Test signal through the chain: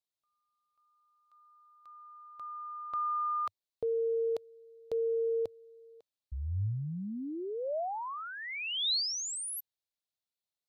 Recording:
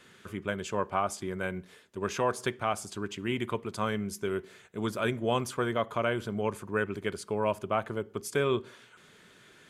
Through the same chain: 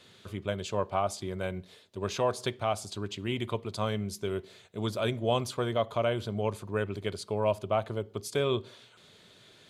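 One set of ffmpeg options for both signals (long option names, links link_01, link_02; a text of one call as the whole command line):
ffmpeg -i in.wav -af "equalizer=frequency=100:width_type=o:width=0.67:gain=8,equalizer=frequency=630:width_type=o:width=0.67:gain=6,equalizer=frequency=1600:width_type=o:width=0.67:gain=-5,equalizer=frequency=4000:width_type=o:width=0.67:gain=10,volume=-2.5dB" out.wav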